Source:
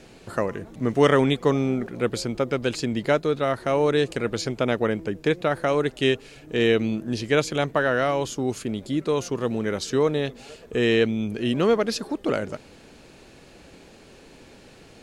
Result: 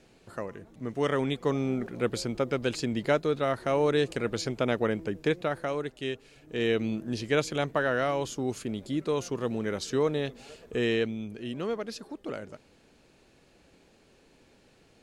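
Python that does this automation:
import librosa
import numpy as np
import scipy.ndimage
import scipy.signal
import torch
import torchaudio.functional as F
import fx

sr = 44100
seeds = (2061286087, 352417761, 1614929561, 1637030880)

y = fx.gain(x, sr, db=fx.line((0.94, -11.0), (1.86, -4.0), (5.25, -4.0), (6.04, -12.5), (6.9, -5.0), (10.74, -5.0), (11.43, -12.0)))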